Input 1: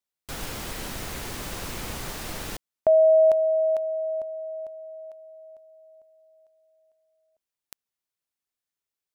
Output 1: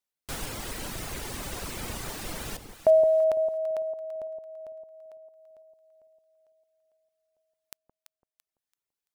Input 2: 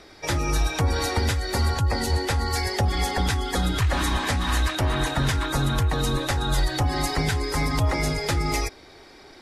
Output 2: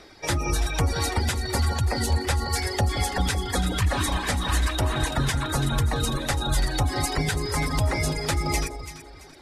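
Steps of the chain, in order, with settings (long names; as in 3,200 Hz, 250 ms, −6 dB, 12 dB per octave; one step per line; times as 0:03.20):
reverb reduction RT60 1 s
dynamic equaliser 8,900 Hz, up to +5 dB, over −49 dBFS, Q 2.3
on a send: delay that swaps between a low-pass and a high-pass 168 ms, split 900 Hz, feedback 56%, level −7 dB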